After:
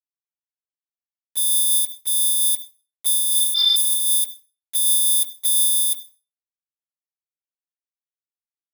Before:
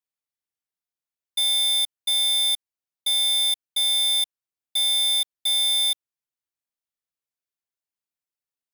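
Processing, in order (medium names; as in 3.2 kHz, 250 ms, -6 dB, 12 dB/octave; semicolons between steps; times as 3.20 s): spectral replace 3.35–3.99 s, 850–5500 Hz; differentiator; harmonic-percussive split harmonic -6 dB; resonant low shelf 480 Hz -10.5 dB, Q 1.5; in parallel at -0.5 dB: compressor with a negative ratio -39 dBFS, ratio -1; on the sum: saturation -20.5 dBFS, distortion -19 dB; static phaser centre 630 Hz, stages 6; small samples zeroed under -50 dBFS; on a send at -23 dB: reverberation RT60 0.35 s, pre-delay 62 ms; on the sum: loudness maximiser +30.5 dB; random flutter of the level, depth 55%; trim -7.5 dB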